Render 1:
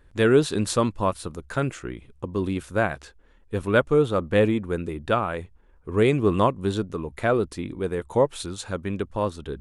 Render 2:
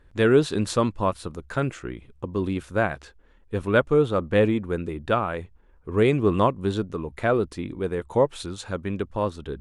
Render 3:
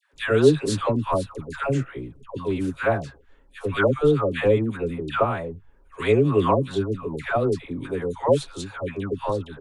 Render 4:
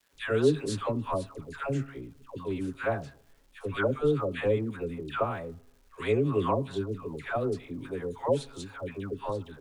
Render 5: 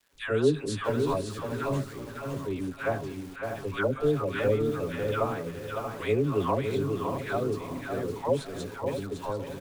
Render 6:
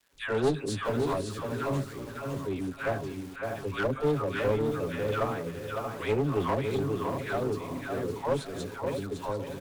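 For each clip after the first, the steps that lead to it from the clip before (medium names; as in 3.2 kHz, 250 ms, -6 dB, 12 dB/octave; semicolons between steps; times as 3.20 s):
treble shelf 8.2 kHz -9 dB
comb 7.3 ms, depth 40%; phase dispersion lows, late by 136 ms, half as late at 840 Hz
crackle 580 per s -49 dBFS; on a send at -21 dB: reverberation RT60 0.85 s, pre-delay 4 ms; on the sum: trim -7.5 dB
feedback delay 558 ms, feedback 27%, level -6 dB; bit-crushed delay 634 ms, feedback 35%, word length 7-bit, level -9 dB
one-sided clip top -27 dBFS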